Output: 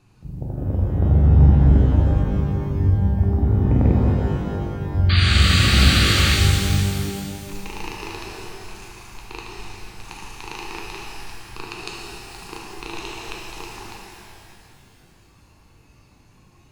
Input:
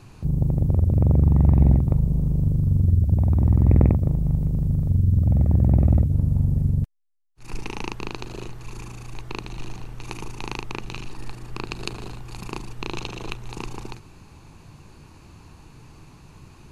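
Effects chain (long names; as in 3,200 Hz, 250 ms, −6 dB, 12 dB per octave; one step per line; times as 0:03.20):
sound drawn into the spectrogram noise, 0:05.09–0:06.35, 1,100–4,800 Hz −22 dBFS
noise reduction from a noise print of the clip's start 9 dB
reverb with rising layers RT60 2.6 s, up +12 semitones, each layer −8 dB, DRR −2.5 dB
level −3 dB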